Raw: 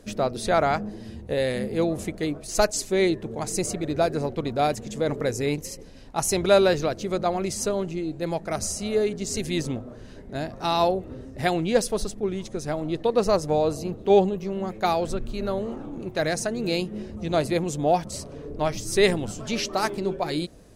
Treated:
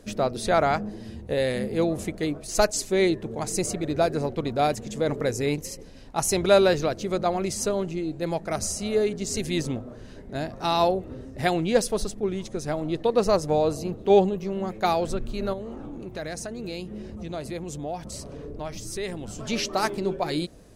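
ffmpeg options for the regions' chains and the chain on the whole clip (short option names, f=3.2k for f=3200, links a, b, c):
-filter_complex "[0:a]asettb=1/sr,asplit=3[a][b][c];[a]atrim=end=15.534[d];[b]atrim=start=15.53:end=19.39,asetpts=PTS-STARTPTS,afade=t=in:d=0.004:c=qsin,afade=t=out:st=3.856:d=0.004:c=qsin,acompressor=threshold=-34dB:ratio=2.5:attack=3.2:release=140:knee=1:detection=peak,aeval=exprs='val(0)+0.00447*(sin(2*PI*60*n/s)+sin(2*PI*2*60*n/s)/2+sin(2*PI*3*60*n/s)/3+sin(2*PI*4*60*n/s)/4+sin(2*PI*5*60*n/s)/5)':c=same[e];[c]atrim=start=19.386[f];[d][e]acrossfade=d=0.004:c1=hsin:c2=qsin[g];[g][f]acrossfade=d=0.004:c1=qsin:c2=hsin"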